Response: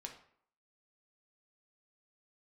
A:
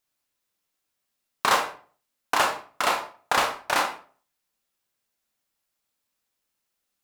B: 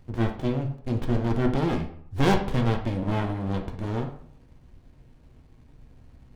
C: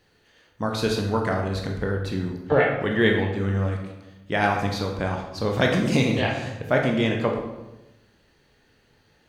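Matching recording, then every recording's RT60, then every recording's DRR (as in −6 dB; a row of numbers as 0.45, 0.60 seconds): B; 0.40, 0.60, 1.0 seconds; 2.0, 2.0, 0.5 decibels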